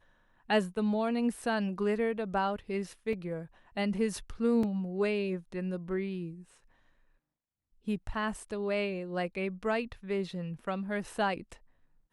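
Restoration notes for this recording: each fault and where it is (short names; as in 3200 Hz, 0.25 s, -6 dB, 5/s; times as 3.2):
3.13 gap 3.1 ms
4.63 gap 3.7 ms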